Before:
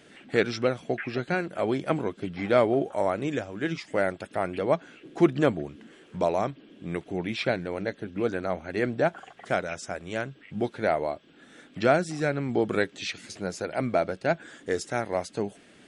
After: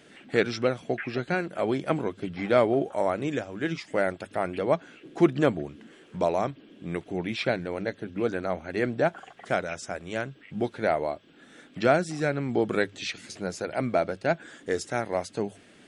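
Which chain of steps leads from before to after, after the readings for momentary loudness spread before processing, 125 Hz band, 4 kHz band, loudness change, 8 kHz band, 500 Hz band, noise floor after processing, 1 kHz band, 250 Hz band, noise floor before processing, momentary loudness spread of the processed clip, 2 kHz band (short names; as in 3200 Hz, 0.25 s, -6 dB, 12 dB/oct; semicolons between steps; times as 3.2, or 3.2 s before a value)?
10 LU, 0.0 dB, 0.0 dB, 0.0 dB, 0.0 dB, 0.0 dB, -55 dBFS, 0.0 dB, 0.0 dB, -55 dBFS, 10 LU, 0.0 dB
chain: notches 50/100 Hz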